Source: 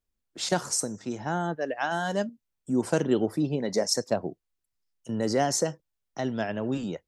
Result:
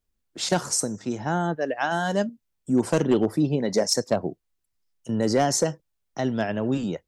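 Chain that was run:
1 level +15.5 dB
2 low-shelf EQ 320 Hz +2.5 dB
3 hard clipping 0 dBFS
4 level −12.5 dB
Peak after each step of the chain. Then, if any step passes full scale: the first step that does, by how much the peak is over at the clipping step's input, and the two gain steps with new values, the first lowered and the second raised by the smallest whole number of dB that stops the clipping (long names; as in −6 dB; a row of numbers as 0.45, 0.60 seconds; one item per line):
+5.0, +6.0, 0.0, −12.5 dBFS
step 1, 6.0 dB
step 1 +9.5 dB, step 4 −6.5 dB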